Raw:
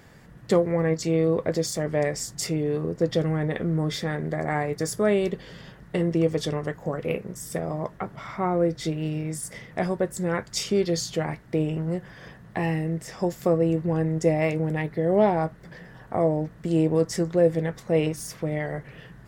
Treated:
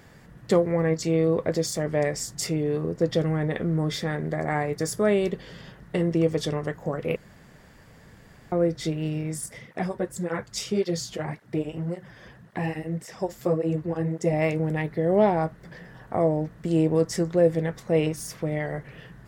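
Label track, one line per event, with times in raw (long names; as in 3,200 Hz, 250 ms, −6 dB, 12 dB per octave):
7.160000	8.520000	fill with room tone
9.460000	14.330000	through-zero flanger with one copy inverted nulls at 1.8 Hz, depth 7.6 ms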